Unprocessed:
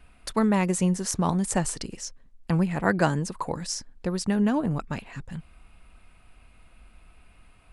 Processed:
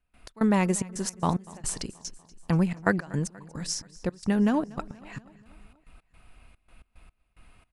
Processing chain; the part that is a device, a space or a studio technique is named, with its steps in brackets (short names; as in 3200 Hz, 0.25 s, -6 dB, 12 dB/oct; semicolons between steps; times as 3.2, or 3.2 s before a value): trance gate with a delay (step gate ".x.xxx.x.x..xx" 110 bpm -24 dB; feedback echo 0.24 s, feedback 59%, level -21.5 dB)